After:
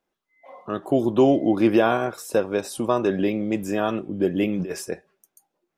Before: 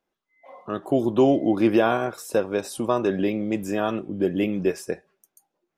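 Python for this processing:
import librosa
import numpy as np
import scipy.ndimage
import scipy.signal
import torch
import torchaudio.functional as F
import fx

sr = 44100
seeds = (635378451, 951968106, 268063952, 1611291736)

y = fx.over_compress(x, sr, threshold_db=-28.0, ratio=-1.0, at=(4.51, 4.92))
y = F.gain(torch.from_numpy(y), 1.0).numpy()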